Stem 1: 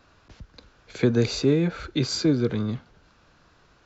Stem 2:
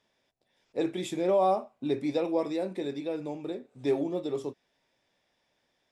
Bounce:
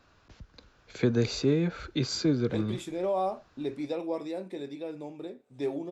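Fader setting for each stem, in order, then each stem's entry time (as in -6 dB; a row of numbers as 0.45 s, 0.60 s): -4.5 dB, -4.5 dB; 0.00 s, 1.75 s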